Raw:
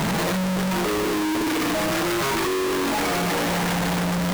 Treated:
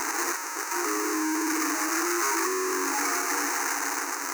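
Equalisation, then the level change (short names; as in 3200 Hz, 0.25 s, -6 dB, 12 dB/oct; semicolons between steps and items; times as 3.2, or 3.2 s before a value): brick-wall FIR high-pass 280 Hz; bell 6300 Hz +12 dB 0.39 oct; fixed phaser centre 1400 Hz, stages 4; 0.0 dB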